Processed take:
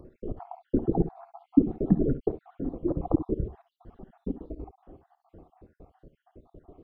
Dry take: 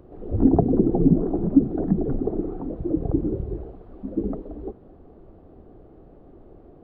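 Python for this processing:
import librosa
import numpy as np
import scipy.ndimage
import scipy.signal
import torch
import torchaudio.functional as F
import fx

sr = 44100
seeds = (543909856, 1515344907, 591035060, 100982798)

y = fx.spec_dropout(x, sr, seeds[0], share_pct=67)
y = fx.peak_eq(y, sr, hz=1000.0, db=12.5, octaves=0.88, at=(2.87, 3.37), fade=0.02)
y = fx.room_early_taps(y, sr, ms=(54, 67), db=(-15.5, -14.5))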